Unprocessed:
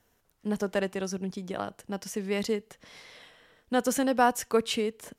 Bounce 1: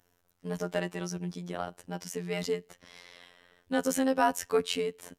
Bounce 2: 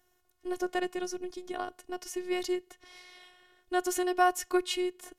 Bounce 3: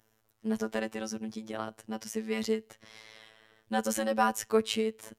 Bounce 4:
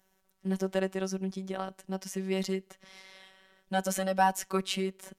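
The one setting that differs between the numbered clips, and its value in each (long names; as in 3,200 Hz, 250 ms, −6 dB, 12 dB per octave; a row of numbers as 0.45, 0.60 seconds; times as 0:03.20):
phases set to zero, frequency: 88, 360, 110, 190 Hertz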